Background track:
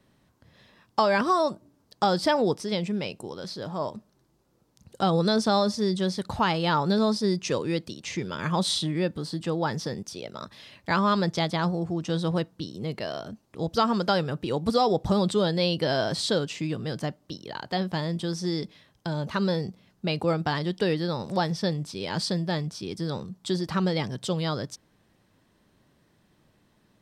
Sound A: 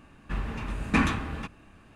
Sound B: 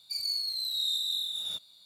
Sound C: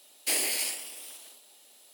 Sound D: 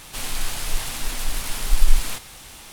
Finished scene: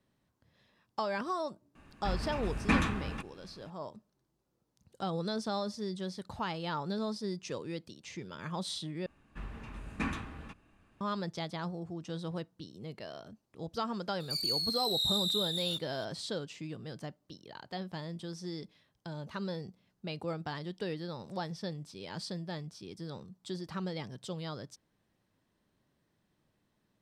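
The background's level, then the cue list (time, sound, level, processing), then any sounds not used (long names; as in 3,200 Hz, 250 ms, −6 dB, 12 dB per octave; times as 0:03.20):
background track −12 dB
0:01.75: mix in A −4 dB
0:09.06: overwrite with A −11.5 dB
0:14.20: mix in B −1 dB + one half of a high-frequency compander encoder only
not used: C, D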